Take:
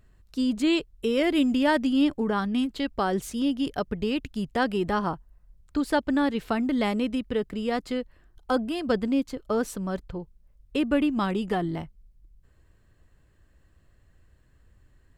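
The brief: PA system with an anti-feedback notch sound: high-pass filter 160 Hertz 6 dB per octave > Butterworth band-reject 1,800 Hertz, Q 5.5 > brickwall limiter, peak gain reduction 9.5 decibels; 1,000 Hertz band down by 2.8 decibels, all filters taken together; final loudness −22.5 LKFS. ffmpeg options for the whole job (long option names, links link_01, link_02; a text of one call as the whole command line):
ffmpeg -i in.wav -af "highpass=frequency=160:poles=1,asuperstop=centerf=1800:order=8:qfactor=5.5,equalizer=frequency=1000:width_type=o:gain=-3.5,volume=8.5dB,alimiter=limit=-13dB:level=0:latency=1" out.wav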